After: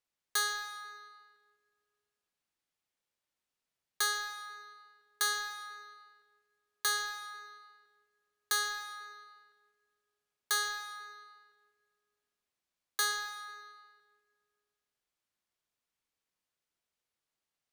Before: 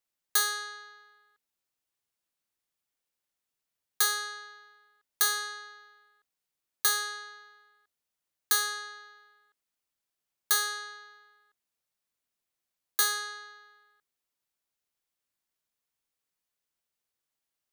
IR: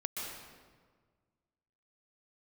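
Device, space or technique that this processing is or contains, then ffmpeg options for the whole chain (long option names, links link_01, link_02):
saturated reverb return: -filter_complex "[0:a]asplit=2[link_01][link_02];[1:a]atrim=start_sample=2205[link_03];[link_02][link_03]afir=irnorm=-1:irlink=0,asoftclip=type=tanh:threshold=-35dB,volume=-4.5dB[link_04];[link_01][link_04]amix=inputs=2:normalize=0,highshelf=frequency=10000:gain=-11.5,volume=-3.5dB"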